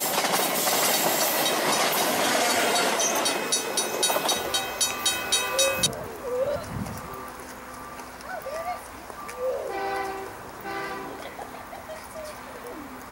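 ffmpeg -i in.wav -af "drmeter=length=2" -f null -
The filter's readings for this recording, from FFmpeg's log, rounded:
Channel 1: DR: 11.2
Overall DR: 11.2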